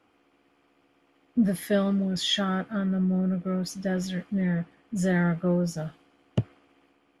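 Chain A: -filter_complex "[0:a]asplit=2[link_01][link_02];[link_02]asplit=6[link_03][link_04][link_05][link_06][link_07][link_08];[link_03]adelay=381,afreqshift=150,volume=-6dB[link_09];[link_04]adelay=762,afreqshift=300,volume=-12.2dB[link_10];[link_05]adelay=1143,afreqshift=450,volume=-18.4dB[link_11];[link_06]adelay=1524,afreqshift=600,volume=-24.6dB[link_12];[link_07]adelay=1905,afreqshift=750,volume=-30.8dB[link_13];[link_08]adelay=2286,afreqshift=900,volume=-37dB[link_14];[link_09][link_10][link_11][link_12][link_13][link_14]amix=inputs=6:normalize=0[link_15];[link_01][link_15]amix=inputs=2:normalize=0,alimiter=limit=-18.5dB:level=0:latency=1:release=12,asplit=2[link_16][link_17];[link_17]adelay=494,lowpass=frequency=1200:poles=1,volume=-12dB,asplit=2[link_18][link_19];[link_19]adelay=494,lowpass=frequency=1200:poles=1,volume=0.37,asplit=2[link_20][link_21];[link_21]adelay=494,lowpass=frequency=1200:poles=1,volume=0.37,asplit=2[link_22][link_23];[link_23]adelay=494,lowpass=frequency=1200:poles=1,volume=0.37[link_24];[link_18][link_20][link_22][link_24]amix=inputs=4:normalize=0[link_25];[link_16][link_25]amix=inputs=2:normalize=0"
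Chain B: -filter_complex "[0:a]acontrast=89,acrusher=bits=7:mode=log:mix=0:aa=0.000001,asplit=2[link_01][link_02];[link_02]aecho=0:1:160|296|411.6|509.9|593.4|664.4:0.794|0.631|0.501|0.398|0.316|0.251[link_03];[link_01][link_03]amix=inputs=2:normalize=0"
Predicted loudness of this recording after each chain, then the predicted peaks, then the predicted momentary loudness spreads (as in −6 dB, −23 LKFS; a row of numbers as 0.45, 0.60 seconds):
−27.5, −17.0 LKFS; −16.5, −3.0 dBFS; 9, 9 LU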